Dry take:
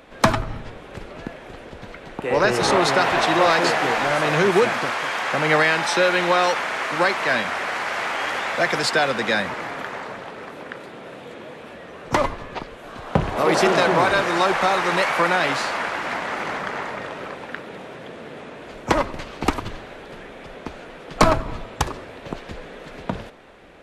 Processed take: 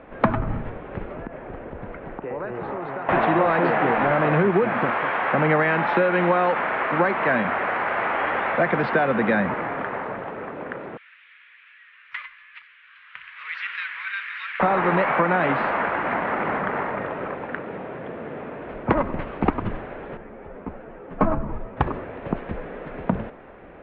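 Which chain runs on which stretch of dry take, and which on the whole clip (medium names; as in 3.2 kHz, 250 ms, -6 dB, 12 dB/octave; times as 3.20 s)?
1.15–3.09 s: low-pass 2.3 kHz 6 dB/octave + compression 5:1, threshold -32 dBFS
10.97–14.60 s: inverse Chebyshev high-pass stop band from 750 Hz, stop band 50 dB + upward compressor, threshold -43 dBFS
20.17–21.77 s: tape spacing loss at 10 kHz 26 dB + three-phase chorus
whole clip: Bessel low-pass 1.6 kHz, order 6; dynamic bell 200 Hz, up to +6 dB, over -39 dBFS, Q 1.7; compression 5:1, threshold -20 dBFS; trim +4 dB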